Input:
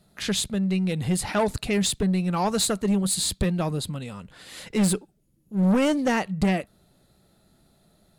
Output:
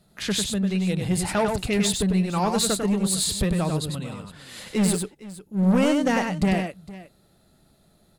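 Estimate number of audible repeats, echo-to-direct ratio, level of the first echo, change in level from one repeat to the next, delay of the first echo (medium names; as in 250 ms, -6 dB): 2, -5.0 dB, -5.0 dB, no regular repeats, 98 ms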